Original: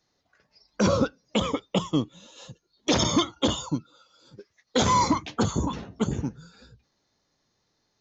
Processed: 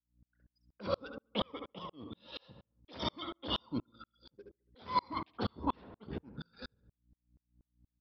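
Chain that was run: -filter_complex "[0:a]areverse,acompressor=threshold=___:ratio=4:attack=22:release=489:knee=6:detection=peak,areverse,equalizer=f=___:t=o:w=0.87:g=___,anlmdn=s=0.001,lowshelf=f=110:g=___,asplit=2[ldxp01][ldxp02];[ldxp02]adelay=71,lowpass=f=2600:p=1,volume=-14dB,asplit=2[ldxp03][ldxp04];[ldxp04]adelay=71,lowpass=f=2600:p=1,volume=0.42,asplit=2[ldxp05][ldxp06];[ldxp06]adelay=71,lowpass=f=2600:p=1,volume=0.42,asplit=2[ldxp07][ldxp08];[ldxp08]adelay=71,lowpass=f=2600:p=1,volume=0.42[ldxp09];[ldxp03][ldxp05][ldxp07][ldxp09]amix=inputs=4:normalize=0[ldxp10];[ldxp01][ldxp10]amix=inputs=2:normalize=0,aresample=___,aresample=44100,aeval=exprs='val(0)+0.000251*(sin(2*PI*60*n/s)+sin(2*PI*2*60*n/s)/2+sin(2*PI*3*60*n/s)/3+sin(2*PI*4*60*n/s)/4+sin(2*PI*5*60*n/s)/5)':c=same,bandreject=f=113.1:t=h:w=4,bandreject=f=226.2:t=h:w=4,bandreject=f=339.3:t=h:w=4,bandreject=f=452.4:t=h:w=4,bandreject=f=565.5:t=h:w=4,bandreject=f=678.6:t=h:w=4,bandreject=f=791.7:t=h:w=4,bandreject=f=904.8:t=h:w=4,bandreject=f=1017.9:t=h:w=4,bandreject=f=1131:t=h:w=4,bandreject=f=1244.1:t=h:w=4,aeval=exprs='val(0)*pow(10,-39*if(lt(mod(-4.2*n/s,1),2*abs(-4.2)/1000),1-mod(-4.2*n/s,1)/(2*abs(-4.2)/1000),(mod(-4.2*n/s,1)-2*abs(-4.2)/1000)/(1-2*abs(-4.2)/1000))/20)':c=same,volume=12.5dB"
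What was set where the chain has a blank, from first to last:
-39dB, 140, -7.5, -4, 11025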